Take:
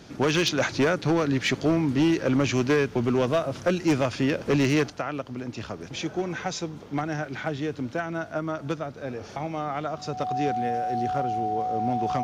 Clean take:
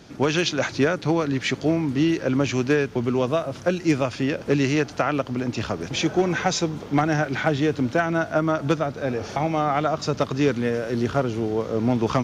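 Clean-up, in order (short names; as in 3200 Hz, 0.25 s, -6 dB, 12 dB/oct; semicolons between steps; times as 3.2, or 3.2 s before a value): clip repair -16.5 dBFS; notch 740 Hz, Q 30; gain 0 dB, from 4.9 s +8 dB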